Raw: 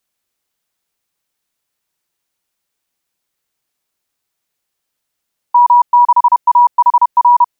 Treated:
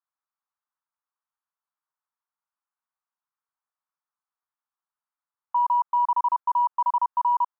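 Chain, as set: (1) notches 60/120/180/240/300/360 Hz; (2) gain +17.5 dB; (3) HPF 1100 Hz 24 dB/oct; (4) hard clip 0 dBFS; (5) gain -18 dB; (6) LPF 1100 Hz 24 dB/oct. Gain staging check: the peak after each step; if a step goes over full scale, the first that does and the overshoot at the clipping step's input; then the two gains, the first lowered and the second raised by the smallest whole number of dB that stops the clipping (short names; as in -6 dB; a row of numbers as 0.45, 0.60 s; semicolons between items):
-4.0, +13.5, +8.0, 0.0, -18.0, -17.5 dBFS; step 2, 8.0 dB; step 2 +9.5 dB, step 5 -10 dB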